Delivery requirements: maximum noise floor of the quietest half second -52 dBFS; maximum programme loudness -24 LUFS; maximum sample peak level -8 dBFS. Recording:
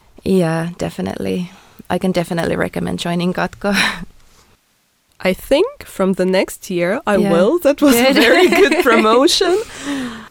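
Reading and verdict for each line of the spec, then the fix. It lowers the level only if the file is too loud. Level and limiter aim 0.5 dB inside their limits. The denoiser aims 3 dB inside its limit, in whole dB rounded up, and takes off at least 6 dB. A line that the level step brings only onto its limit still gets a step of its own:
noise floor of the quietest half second -60 dBFS: OK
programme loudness -15.5 LUFS: fail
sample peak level -2.0 dBFS: fail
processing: gain -9 dB

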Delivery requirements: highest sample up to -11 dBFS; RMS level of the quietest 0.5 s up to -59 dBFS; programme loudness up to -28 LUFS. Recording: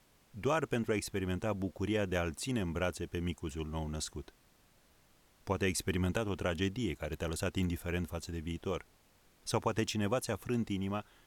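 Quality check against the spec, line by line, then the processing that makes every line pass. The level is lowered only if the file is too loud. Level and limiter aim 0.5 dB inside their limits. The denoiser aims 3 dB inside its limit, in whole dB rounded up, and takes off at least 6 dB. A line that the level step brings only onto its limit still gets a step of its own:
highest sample -18.5 dBFS: OK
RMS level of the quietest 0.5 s -66 dBFS: OK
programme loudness -36.0 LUFS: OK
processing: none

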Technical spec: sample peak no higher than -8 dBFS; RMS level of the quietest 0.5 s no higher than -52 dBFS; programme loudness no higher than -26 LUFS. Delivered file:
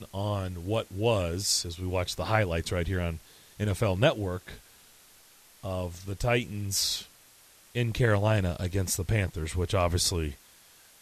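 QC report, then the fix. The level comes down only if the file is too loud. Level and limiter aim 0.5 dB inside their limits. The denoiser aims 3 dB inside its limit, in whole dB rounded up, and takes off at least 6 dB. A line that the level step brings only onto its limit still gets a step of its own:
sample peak -9.5 dBFS: OK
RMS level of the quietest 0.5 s -57 dBFS: OK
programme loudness -29.0 LUFS: OK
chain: none

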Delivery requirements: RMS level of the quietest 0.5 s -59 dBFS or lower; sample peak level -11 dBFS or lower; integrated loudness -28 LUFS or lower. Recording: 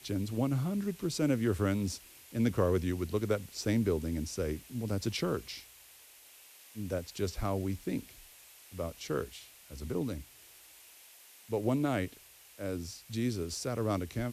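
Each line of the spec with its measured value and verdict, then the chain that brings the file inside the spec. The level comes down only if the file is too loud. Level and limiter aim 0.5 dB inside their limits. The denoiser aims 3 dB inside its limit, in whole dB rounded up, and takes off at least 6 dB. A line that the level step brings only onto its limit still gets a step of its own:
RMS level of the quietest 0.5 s -57 dBFS: fail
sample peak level -15.5 dBFS: OK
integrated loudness -34.0 LUFS: OK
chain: denoiser 6 dB, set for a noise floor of -57 dBFS

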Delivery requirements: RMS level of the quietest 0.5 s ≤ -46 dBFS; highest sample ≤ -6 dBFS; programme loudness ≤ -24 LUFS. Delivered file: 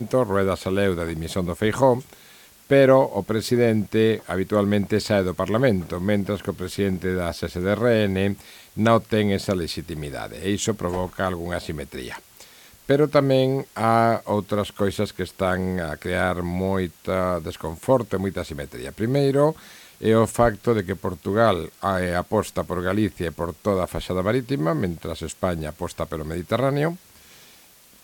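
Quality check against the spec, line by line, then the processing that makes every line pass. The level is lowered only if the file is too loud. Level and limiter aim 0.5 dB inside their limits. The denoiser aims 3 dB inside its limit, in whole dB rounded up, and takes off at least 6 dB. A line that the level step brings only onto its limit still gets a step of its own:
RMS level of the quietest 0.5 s -52 dBFS: OK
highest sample -5.0 dBFS: fail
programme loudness -23.0 LUFS: fail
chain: gain -1.5 dB

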